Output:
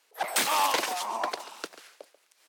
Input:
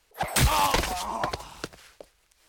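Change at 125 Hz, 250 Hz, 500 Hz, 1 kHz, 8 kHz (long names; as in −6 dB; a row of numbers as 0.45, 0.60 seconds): below −25 dB, −8.5 dB, −2.0 dB, −1.5 dB, −1.0 dB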